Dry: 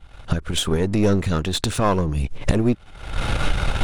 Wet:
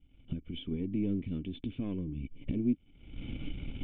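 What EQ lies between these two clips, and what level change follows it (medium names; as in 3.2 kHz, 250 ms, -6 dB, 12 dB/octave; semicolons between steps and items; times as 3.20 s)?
cascade formant filter i; -5.0 dB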